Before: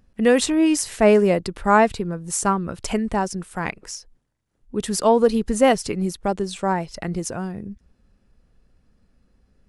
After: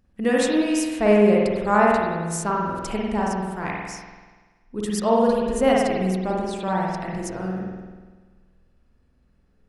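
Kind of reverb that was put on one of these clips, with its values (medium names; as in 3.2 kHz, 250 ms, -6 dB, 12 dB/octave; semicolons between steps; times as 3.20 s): spring tank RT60 1.4 s, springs 48 ms, chirp 50 ms, DRR -3.5 dB; trim -6 dB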